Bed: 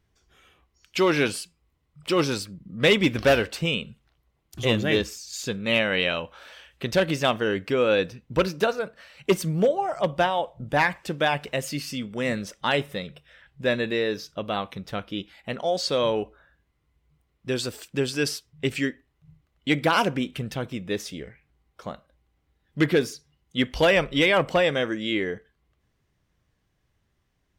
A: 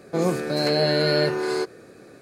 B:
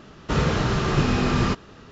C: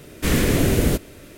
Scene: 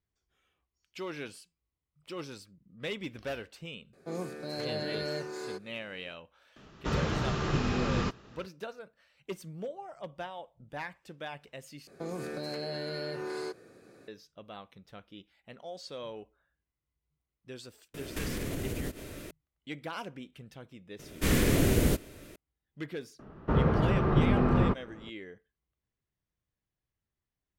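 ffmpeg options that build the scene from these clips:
-filter_complex "[1:a]asplit=2[a][b];[2:a]asplit=2[c][d];[3:a]asplit=2[e][f];[0:a]volume=-18dB[g];[b]acompressor=threshold=-23dB:ratio=6:attack=3.2:release=140:knee=1:detection=peak[h];[e]acompressor=threshold=-32dB:ratio=6:attack=3.2:release=140:knee=1:detection=peak[i];[d]lowpass=1.2k[j];[g]asplit=2[k][l];[k]atrim=end=11.874[m];[h]atrim=end=2.21,asetpts=PTS-STARTPTS,volume=-9.5dB[n];[l]atrim=start=14.076[o];[a]atrim=end=2.21,asetpts=PTS-STARTPTS,volume=-14.5dB,afade=t=in:d=0.004:c=hsin,afade=t=out:st=2.206:d=0.004:c=hsin,adelay=173313S[p];[c]atrim=end=1.91,asetpts=PTS-STARTPTS,volume=-8.5dB,afade=t=in:d=0.004:c=hsin,afade=t=out:st=1.906:d=0.004:c=hsin,adelay=6560[q];[i]atrim=end=1.37,asetpts=PTS-STARTPTS,volume=-0.5dB,afade=t=in:d=0.004:c=hsin,afade=t=out:st=1.366:d=0.004:c=hsin,adelay=17940[r];[f]atrim=end=1.37,asetpts=PTS-STARTPTS,volume=-6.5dB,afade=t=in:d=0.004:c=hsin,afade=t=out:st=1.366:d=0.004:c=hsin,adelay=20990[s];[j]atrim=end=1.91,asetpts=PTS-STARTPTS,volume=-3dB,afade=t=in:d=0.004:c=hsin,afade=t=out:st=1.906:d=0.004:c=hsin,adelay=23190[t];[m][n]acrossfade=d=0.004:c1=hsin:c2=hsin[u];[u][o]acrossfade=d=0.004:c1=hsin:c2=hsin[v];[v][p][q][r][s][t]amix=inputs=6:normalize=0"

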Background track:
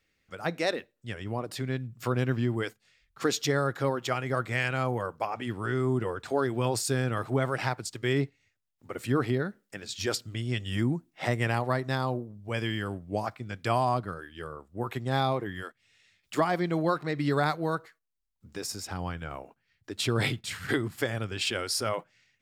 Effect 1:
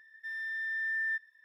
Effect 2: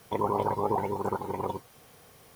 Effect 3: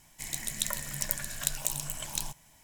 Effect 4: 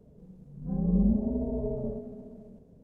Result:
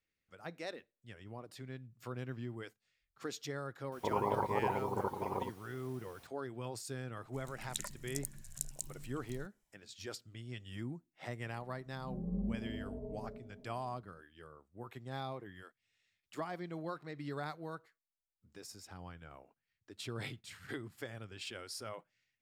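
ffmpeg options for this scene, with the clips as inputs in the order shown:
-filter_complex "[0:a]volume=-15dB[a];[3:a]afwtdn=0.0126[b];[2:a]atrim=end=2.35,asetpts=PTS-STARTPTS,volume=-6dB,afade=t=in:d=0.004:c=hsin,afade=t=out:st=2.346:d=0.004:c=hsin,adelay=3920[c];[b]atrim=end=2.63,asetpts=PTS-STARTPTS,volume=-8.5dB,afade=t=in:d=0.004:c=hsin,afade=t=out:st=2.626:d=0.004:c=hsin,adelay=314874S[d];[4:a]atrim=end=2.83,asetpts=PTS-STARTPTS,volume=-13dB,afade=t=in:d=0.004:c=hsin,afade=t=out:st=2.826:d=0.004:c=hsin,adelay=11390[e];[a][c][d][e]amix=inputs=4:normalize=0"

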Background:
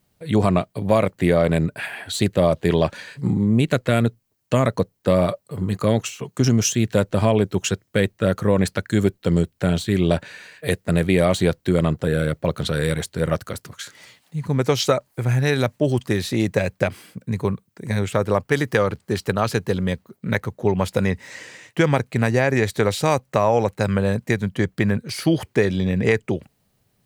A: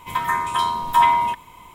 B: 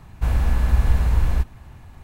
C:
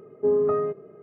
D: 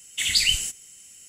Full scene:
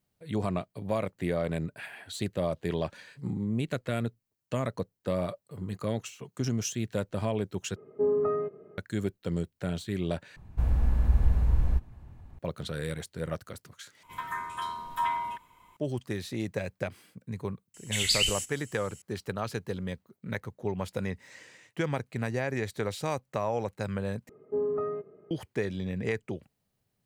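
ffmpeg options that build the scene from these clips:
-filter_complex "[3:a]asplit=2[a][b];[0:a]volume=-12.5dB[c];[2:a]tiltshelf=f=840:g=5.5[d];[1:a]equalizer=f=1.5k:t=o:w=0.49:g=6.5[e];[c]asplit=5[f][g][h][i][j];[f]atrim=end=7.764[k];[a]atrim=end=1.02,asetpts=PTS-STARTPTS,volume=-4.5dB[l];[g]atrim=start=8.776:end=10.364[m];[d]atrim=end=2.03,asetpts=PTS-STARTPTS,volume=-11dB[n];[h]atrim=start=12.386:end=14.034[o];[e]atrim=end=1.74,asetpts=PTS-STARTPTS,volume=-15dB[p];[i]atrim=start=15.766:end=24.294[q];[b]atrim=end=1.02,asetpts=PTS-STARTPTS,volume=-8dB[r];[j]atrim=start=25.306[s];[4:a]atrim=end=1.28,asetpts=PTS-STARTPTS,volume=-5dB,afade=t=in:d=0.004:c=hsin,afade=t=out:st=1.276:d=0.004:c=hsin,adelay=17740[t];[k][l]acrossfade=d=0.004:c1=hsin:c2=hsin[u];[u][m]acrossfade=d=0.004:c1=hsin:c2=hsin[v];[v][n]acrossfade=d=0.004:c1=hsin:c2=hsin[w];[w][o]acrossfade=d=0.004:c1=hsin:c2=hsin[x];[x][p]acrossfade=d=0.004:c1=hsin:c2=hsin[y];[y][q]acrossfade=d=0.004:c1=hsin:c2=hsin[z];[z][r]acrossfade=d=0.004:c1=hsin:c2=hsin[aa];[aa][s]acrossfade=d=0.004:c1=hsin:c2=hsin[ab];[ab][t]amix=inputs=2:normalize=0"

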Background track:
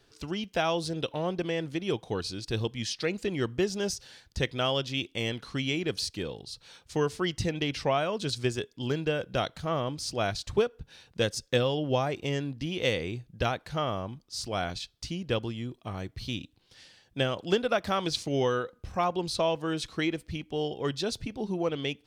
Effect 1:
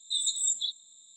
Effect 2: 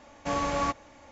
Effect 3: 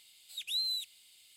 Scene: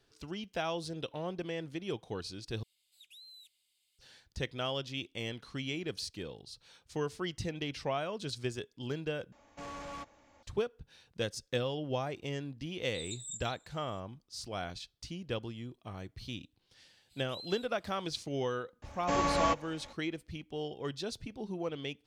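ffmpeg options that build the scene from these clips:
-filter_complex "[3:a]asplit=2[a][b];[2:a]asplit=2[c][d];[0:a]volume=-7.5dB[e];[a]acompressor=threshold=-35dB:ratio=6:attack=3.2:release=140:knee=1:detection=peak[f];[c]asoftclip=type=tanh:threshold=-29.5dB[g];[b]highshelf=f=7.6k:g=-11.5[h];[e]asplit=3[i][j][k];[i]atrim=end=2.634[l];[f]atrim=end=1.36,asetpts=PTS-STARTPTS,volume=-16.5dB[m];[j]atrim=start=3.986:end=9.324[n];[g]atrim=end=1.11,asetpts=PTS-STARTPTS,volume=-10.5dB[o];[k]atrim=start=10.426[p];[1:a]atrim=end=1.16,asetpts=PTS-STARTPTS,volume=-15dB,afade=t=in:d=0.004:c=hsin,afade=t=out:st=1.156:d=0.004:c=hsin,adelay=566244S[q];[h]atrim=end=1.36,asetpts=PTS-STARTPTS,volume=-11.5dB,afade=t=in:d=0.004:c=hsin,afade=t=out:st=1.356:d=0.004:c=hsin,adelay=16810[r];[d]atrim=end=1.11,asetpts=PTS-STARTPTS,volume=-1dB,afade=t=in:d=0.004:c=hsin,afade=t=out:st=1.106:d=0.004:c=hsin,adelay=18820[s];[l][m]acrossfade=d=0.004:c1=hsin:c2=hsin[t];[t][n]acrossfade=d=0.004:c1=hsin:c2=hsin[u];[u][o]acrossfade=d=0.004:c1=hsin:c2=hsin[v];[v][p]acrossfade=d=0.004:c1=hsin:c2=hsin[w];[w][q][r][s]amix=inputs=4:normalize=0"

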